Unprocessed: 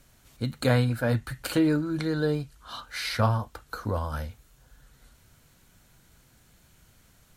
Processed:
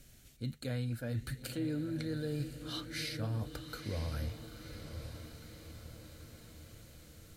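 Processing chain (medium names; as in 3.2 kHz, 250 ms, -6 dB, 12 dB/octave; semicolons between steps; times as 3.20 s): peaking EQ 1 kHz -14.5 dB 1 oct; reverse; compression 6:1, threshold -36 dBFS, peak gain reduction 15 dB; reverse; echo that smears into a reverb 973 ms, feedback 58%, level -9 dB; trim +1 dB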